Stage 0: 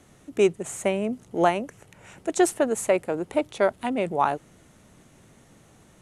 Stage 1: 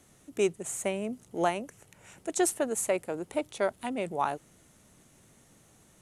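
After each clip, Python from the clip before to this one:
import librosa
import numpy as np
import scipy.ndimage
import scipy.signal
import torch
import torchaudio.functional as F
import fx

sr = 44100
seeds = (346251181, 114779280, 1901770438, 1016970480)

y = fx.high_shelf(x, sr, hz=5400.0, db=10.0)
y = F.gain(torch.from_numpy(y), -7.0).numpy()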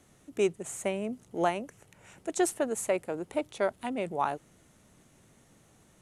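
y = fx.high_shelf(x, sr, hz=5300.0, db=-5.5)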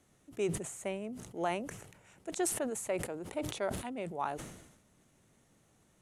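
y = fx.sustainer(x, sr, db_per_s=60.0)
y = F.gain(torch.from_numpy(y), -7.0).numpy()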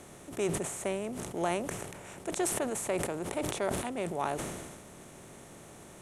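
y = fx.bin_compress(x, sr, power=0.6)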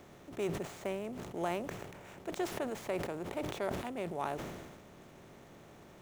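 y = scipy.signal.medfilt(x, 5)
y = F.gain(torch.from_numpy(y), -4.0).numpy()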